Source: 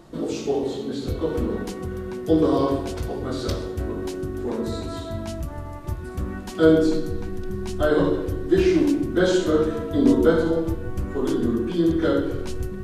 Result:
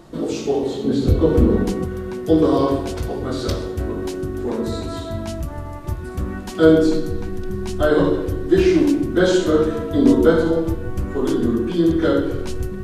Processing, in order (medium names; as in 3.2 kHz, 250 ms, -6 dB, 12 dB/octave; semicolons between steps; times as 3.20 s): 0.84–1.84 s: bass shelf 490 Hz +9 dB; trim +3.5 dB